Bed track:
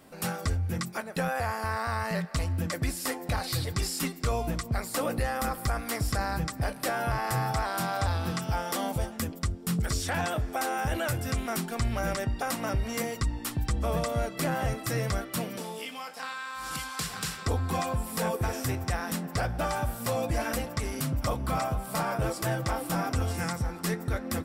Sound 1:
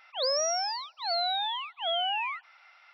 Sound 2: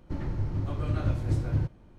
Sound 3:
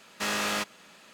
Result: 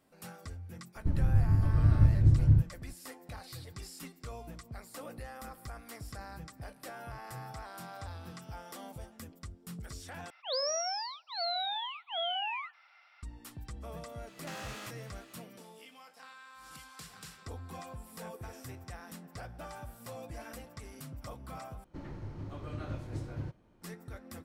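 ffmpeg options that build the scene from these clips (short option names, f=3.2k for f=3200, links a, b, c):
-filter_complex "[2:a]asplit=2[a][b];[0:a]volume=-15.5dB[c];[a]bass=f=250:g=14,treble=f=4k:g=-1[d];[1:a]flanger=delay=1.6:depth=4.9:regen=-83:speed=0.96:shape=triangular[e];[3:a]acompressor=threshold=-36dB:ratio=6:attack=3.2:release=140:knee=1:detection=peak[f];[b]lowshelf=f=130:g=-10[g];[c]asplit=3[h][i][j];[h]atrim=end=10.304[k];[e]atrim=end=2.93,asetpts=PTS-STARTPTS,volume=-0.5dB[l];[i]atrim=start=13.226:end=21.844[m];[g]atrim=end=1.98,asetpts=PTS-STARTPTS,volume=-6.5dB[n];[j]atrim=start=23.816[o];[d]atrim=end=1.98,asetpts=PTS-STARTPTS,volume=-8.5dB,afade=t=in:d=0.004:c=hsin,afade=t=out:st=1.976:d=0.004:c=hsin,adelay=950[p];[f]atrim=end=1.13,asetpts=PTS-STARTPTS,volume=-6dB,afade=t=in:d=0.004:c=hsin,afade=t=out:st=1.126:d=0.004:c=hsin,adelay=14270[q];[k][l]acrossfade=d=0.004:c1=hsin:c2=hsin[r];[r][m]acrossfade=d=0.004:c1=hsin:c2=hsin[s];[s][n]acrossfade=d=0.004:c1=hsin:c2=hsin[t];[t][o]acrossfade=d=0.004:c1=hsin:c2=hsin[u];[u][p][q]amix=inputs=3:normalize=0"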